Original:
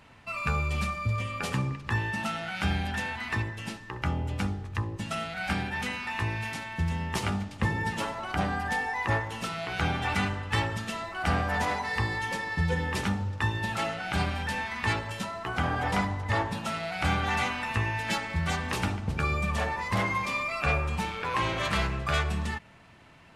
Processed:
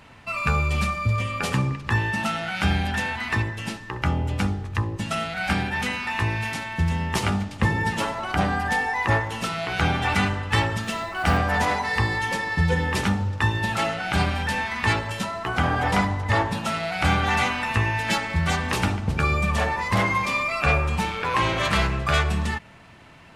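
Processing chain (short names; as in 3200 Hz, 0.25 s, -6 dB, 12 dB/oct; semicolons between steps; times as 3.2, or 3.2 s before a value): 10.83–11.38 short-mantissa float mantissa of 4-bit; gain +6 dB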